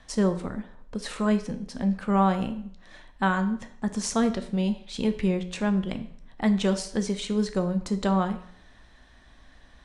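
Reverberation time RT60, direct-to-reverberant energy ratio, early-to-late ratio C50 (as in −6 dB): 0.65 s, 8.0 dB, 13.0 dB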